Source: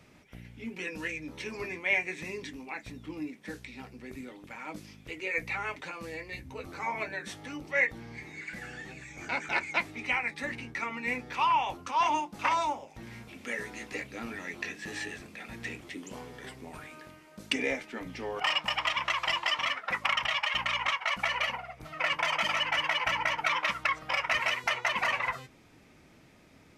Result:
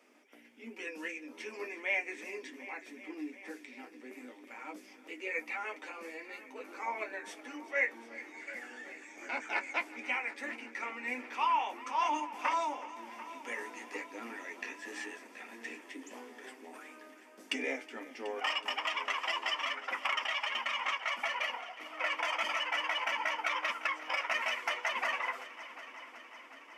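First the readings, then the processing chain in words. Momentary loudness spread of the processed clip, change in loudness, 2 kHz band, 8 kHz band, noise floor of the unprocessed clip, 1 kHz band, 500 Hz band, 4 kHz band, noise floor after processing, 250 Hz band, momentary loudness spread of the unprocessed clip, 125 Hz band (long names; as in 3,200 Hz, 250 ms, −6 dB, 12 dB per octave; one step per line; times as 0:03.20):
16 LU, −5.0 dB, −4.5 dB, −5.0 dB, −58 dBFS, −4.0 dB, −3.5 dB, −5.5 dB, −56 dBFS, −5.5 dB, 16 LU, below −25 dB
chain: elliptic high-pass filter 250 Hz, stop band 40 dB
parametric band 4,000 Hz −9.5 dB 0.21 octaves
flanger 1.6 Hz, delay 8.6 ms, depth 1.8 ms, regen −38%
echo machine with several playback heads 370 ms, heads first and second, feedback 66%, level −19 dB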